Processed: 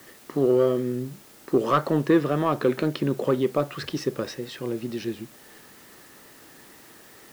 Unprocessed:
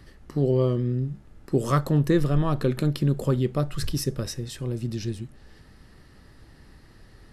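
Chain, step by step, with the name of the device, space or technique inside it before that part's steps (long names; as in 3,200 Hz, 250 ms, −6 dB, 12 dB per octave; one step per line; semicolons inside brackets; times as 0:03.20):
tape answering machine (band-pass filter 310–3,000 Hz; soft clipping −16 dBFS, distortion −20 dB; tape wow and flutter; white noise bed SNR 26 dB)
level +6.5 dB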